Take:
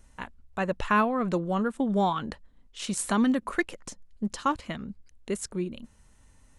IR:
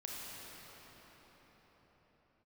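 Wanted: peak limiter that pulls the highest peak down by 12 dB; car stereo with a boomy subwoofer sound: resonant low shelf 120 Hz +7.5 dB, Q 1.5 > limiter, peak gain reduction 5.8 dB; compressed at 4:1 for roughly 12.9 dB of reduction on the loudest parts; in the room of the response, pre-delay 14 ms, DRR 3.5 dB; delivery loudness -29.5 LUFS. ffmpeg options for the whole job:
-filter_complex "[0:a]acompressor=threshold=-36dB:ratio=4,alimiter=level_in=9.5dB:limit=-24dB:level=0:latency=1,volume=-9.5dB,asplit=2[a][b];[1:a]atrim=start_sample=2205,adelay=14[c];[b][c]afir=irnorm=-1:irlink=0,volume=-3.5dB[d];[a][d]amix=inputs=2:normalize=0,lowshelf=f=120:t=q:w=1.5:g=7.5,volume=14.5dB,alimiter=limit=-18.5dB:level=0:latency=1"

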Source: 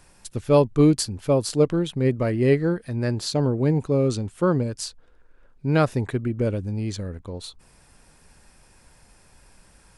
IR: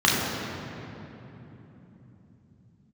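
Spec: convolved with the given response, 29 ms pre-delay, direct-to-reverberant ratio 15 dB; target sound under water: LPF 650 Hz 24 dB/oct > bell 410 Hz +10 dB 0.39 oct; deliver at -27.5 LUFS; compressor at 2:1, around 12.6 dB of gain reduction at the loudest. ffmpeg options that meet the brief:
-filter_complex "[0:a]acompressor=threshold=-36dB:ratio=2,asplit=2[a][b];[1:a]atrim=start_sample=2205,adelay=29[c];[b][c]afir=irnorm=-1:irlink=0,volume=-35dB[d];[a][d]amix=inputs=2:normalize=0,lowpass=f=650:w=0.5412,lowpass=f=650:w=1.3066,equalizer=f=410:t=o:w=0.39:g=10,volume=2.5dB"

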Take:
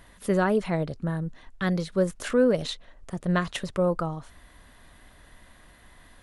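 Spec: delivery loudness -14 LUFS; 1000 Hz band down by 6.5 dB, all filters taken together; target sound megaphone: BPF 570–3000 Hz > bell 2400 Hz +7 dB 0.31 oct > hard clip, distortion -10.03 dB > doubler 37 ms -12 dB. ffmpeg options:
-filter_complex "[0:a]highpass=570,lowpass=3k,equalizer=f=1k:t=o:g=-8,equalizer=f=2.4k:t=o:w=0.31:g=7,asoftclip=type=hard:threshold=-28.5dB,asplit=2[a][b];[b]adelay=37,volume=-12dB[c];[a][c]amix=inputs=2:normalize=0,volume=22.5dB"

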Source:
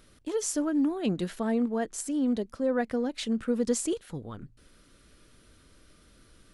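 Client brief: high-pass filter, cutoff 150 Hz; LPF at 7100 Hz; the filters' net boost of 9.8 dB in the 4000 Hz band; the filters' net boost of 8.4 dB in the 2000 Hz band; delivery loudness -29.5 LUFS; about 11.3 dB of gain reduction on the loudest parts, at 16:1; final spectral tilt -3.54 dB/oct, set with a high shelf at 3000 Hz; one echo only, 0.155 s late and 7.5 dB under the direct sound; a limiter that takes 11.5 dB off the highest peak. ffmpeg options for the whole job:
-af "highpass=150,lowpass=7.1k,equalizer=f=2k:t=o:g=8,highshelf=f=3k:g=3.5,equalizer=f=4k:t=o:g=7.5,acompressor=threshold=-33dB:ratio=16,alimiter=level_in=9dB:limit=-24dB:level=0:latency=1,volume=-9dB,aecho=1:1:155:0.422,volume=11dB"

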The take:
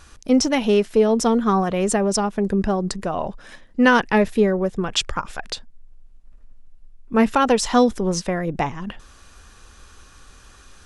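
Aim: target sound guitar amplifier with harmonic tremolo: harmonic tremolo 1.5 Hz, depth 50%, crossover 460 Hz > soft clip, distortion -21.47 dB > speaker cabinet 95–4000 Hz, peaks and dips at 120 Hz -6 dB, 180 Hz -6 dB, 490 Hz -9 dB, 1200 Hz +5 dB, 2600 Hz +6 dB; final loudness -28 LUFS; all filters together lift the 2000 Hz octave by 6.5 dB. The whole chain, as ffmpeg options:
-filter_complex "[0:a]equalizer=f=2k:t=o:g=6.5,acrossover=split=460[a][b];[a]aeval=exprs='val(0)*(1-0.5/2+0.5/2*cos(2*PI*1.5*n/s))':c=same[c];[b]aeval=exprs='val(0)*(1-0.5/2-0.5/2*cos(2*PI*1.5*n/s))':c=same[d];[c][d]amix=inputs=2:normalize=0,asoftclip=threshold=-7.5dB,highpass=95,equalizer=f=120:t=q:w=4:g=-6,equalizer=f=180:t=q:w=4:g=-6,equalizer=f=490:t=q:w=4:g=-9,equalizer=f=1.2k:t=q:w=4:g=5,equalizer=f=2.6k:t=q:w=4:g=6,lowpass=f=4k:w=0.5412,lowpass=f=4k:w=1.3066,volume=-4.5dB"

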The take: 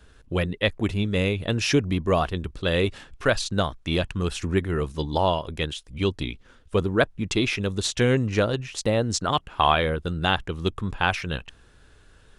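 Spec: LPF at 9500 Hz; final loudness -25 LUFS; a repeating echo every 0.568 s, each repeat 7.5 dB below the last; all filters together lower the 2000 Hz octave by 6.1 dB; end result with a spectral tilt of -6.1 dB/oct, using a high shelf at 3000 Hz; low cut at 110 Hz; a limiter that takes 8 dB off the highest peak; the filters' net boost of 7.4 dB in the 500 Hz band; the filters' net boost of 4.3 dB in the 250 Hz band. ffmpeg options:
-af "highpass=110,lowpass=9.5k,equalizer=f=250:t=o:g=3.5,equalizer=f=500:t=o:g=8.5,equalizer=f=2k:t=o:g=-6.5,highshelf=f=3k:g=-7,alimiter=limit=-11dB:level=0:latency=1,aecho=1:1:568|1136|1704|2272|2840:0.422|0.177|0.0744|0.0312|0.0131,volume=-1.5dB"

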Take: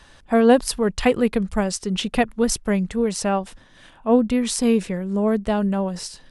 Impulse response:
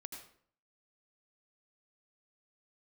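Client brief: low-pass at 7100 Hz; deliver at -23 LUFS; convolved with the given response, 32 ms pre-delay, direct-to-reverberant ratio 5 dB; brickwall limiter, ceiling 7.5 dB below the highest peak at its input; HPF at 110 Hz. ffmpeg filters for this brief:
-filter_complex "[0:a]highpass=110,lowpass=7.1k,alimiter=limit=-12.5dB:level=0:latency=1,asplit=2[a][b];[1:a]atrim=start_sample=2205,adelay=32[c];[b][c]afir=irnorm=-1:irlink=0,volume=-1dB[d];[a][d]amix=inputs=2:normalize=0,volume=-1dB"

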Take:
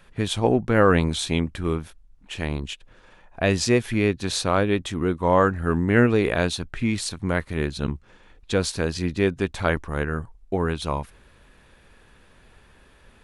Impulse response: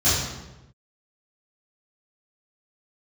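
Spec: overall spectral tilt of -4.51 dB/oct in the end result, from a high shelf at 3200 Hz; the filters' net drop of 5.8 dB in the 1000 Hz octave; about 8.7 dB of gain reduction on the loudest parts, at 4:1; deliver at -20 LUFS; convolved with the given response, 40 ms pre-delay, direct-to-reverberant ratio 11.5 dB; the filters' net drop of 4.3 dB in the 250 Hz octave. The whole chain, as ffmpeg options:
-filter_complex "[0:a]equalizer=f=250:t=o:g=-5.5,equalizer=f=1k:t=o:g=-8,highshelf=f=3.2k:g=4.5,acompressor=threshold=-26dB:ratio=4,asplit=2[a][b];[1:a]atrim=start_sample=2205,adelay=40[c];[b][c]afir=irnorm=-1:irlink=0,volume=-28.5dB[d];[a][d]amix=inputs=2:normalize=0,volume=10dB"

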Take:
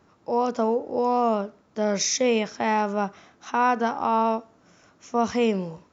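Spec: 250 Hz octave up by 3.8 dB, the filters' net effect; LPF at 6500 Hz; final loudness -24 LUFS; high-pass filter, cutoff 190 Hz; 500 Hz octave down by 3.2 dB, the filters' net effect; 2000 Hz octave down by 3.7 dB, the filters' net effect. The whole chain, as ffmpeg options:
-af "highpass=190,lowpass=6.5k,equalizer=f=250:t=o:g=7,equalizer=f=500:t=o:g=-5,equalizer=f=2k:t=o:g=-5,volume=1dB"

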